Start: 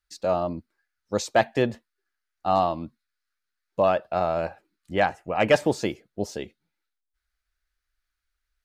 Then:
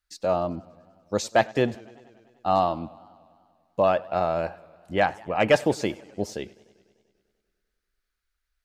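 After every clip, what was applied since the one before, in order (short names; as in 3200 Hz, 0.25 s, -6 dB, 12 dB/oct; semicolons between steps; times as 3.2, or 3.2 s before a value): warbling echo 98 ms, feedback 72%, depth 130 cents, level -23.5 dB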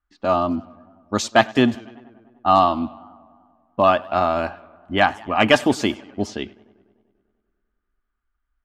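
notch 1300 Hz, Q 9.7; low-pass opened by the level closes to 1100 Hz, open at -22 dBFS; thirty-one-band EQ 160 Hz -9 dB, 250 Hz +9 dB, 500 Hz -11 dB, 1250 Hz +11 dB, 3150 Hz +7 dB; gain +5.5 dB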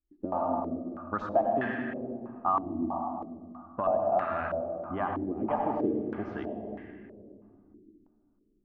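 compressor 4:1, threshold -27 dBFS, peak gain reduction 15 dB; reverb RT60 2.3 s, pre-delay 71 ms, DRR 0.5 dB; stepped low-pass 3.1 Hz 340–1800 Hz; gain -7 dB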